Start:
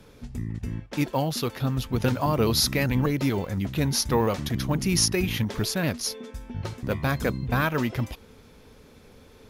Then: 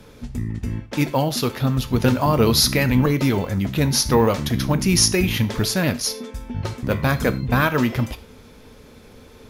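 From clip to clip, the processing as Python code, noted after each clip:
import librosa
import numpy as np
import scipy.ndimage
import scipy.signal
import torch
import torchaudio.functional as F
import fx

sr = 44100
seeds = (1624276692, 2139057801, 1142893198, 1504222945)

y = fx.rev_gated(x, sr, seeds[0], gate_ms=140, shape='falling', drr_db=11.0)
y = y * librosa.db_to_amplitude(5.5)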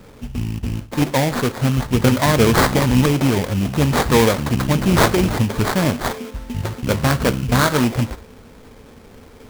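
y = fx.sample_hold(x, sr, seeds[1], rate_hz=2800.0, jitter_pct=20)
y = y * librosa.db_to_amplitude(2.5)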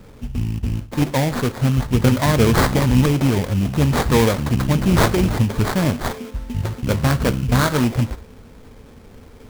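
y = fx.low_shelf(x, sr, hz=170.0, db=6.5)
y = y * librosa.db_to_amplitude(-3.0)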